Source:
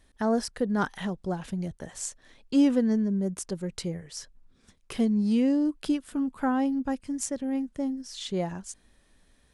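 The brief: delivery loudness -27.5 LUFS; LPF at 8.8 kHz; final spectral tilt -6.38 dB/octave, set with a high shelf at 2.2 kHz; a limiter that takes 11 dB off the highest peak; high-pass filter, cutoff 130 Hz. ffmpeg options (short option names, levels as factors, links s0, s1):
-af "highpass=130,lowpass=8800,highshelf=f=2200:g=-8.5,volume=2,alimiter=limit=0.112:level=0:latency=1"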